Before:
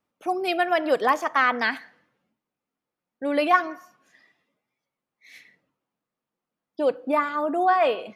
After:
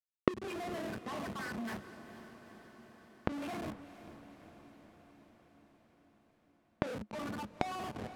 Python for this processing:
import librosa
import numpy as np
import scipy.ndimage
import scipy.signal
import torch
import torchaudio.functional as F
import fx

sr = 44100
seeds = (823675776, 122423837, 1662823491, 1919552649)

p1 = fx.spec_dropout(x, sr, seeds[0], share_pct=56)
p2 = fx.room_shoebox(p1, sr, seeds[1], volume_m3=250.0, walls='furnished', distance_m=1.5)
p3 = fx.schmitt(p2, sr, flips_db=-30.0)
p4 = fx.peak_eq(p3, sr, hz=210.0, db=13.5, octaves=0.37)
p5 = 10.0 ** (-27.0 / 20.0) * np.tanh(p4 / 10.0 ** (-27.0 / 20.0))
p6 = scipy.signal.sosfilt(scipy.signal.butter(4, 76.0, 'highpass', fs=sr, output='sos'), p5)
p7 = fx.env_lowpass(p6, sr, base_hz=2400.0, full_db=-26.0)
p8 = fx.peak_eq(p7, sr, hz=8100.0, db=-6.0, octaves=2.4)
p9 = fx.gate_flip(p8, sr, shuts_db=-31.0, range_db=-28)
p10 = p9 + fx.echo_diffused(p9, sr, ms=462, feedback_pct=67, wet_db=-13.5, dry=0)
y = p10 * 10.0 ** (18.0 / 20.0)